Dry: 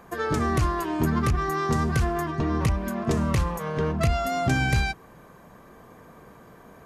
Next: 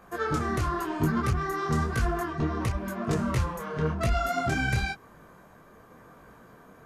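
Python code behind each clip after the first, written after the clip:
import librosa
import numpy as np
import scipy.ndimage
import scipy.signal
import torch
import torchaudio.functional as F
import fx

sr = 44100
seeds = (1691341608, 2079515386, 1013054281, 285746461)

y = fx.peak_eq(x, sr, hz=1400.0, db=5.5, octaves=0.3)
y = fx.detune_double(y, sr, cents=33)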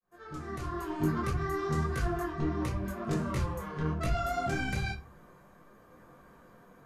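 y = fx.fade_in_head(x, sr, length_s=1.06)
y = fx.room_shoebox(y, sr, seeds[0], volume_m3=130.0, walls='furnished', distance_m=0.95)
y = y * 10.0 ** (-6.5 / 20.0)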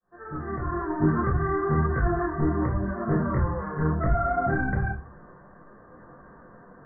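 y = scipy.signal.sosfilt(scipy.signal.butter(16, 1900.0, 'lowpass', fs=sr, output='sos'), x)
y = y * 10.0 ** (7.0 / 20.0)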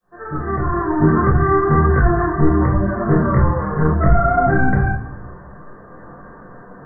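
y = fx.room_shoebox(x, sr, seeds[1], volume_m3=300.0, walls='mixed', distance_m=0.4)
y = y * 10.0 ** (9.0 / 20.0)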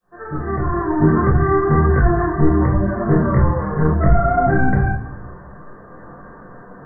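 y = fx.dynamic_eq(x, sr, hz=1300.0, q=2.7, threshold_db=-35.0, ratio=4.0, max_db=-4)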